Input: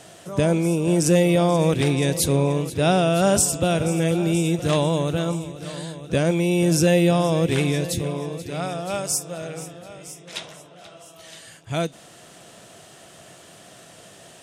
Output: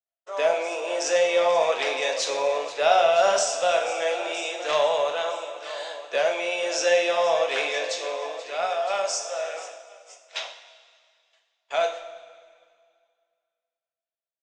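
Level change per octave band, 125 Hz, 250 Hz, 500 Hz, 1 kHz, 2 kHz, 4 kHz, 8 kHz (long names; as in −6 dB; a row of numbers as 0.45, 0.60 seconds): below −35 dB, −23.0 dB, 0.0 dB, +3.0 dB, +2.5 dB, +1.0 dB, −5.5 dB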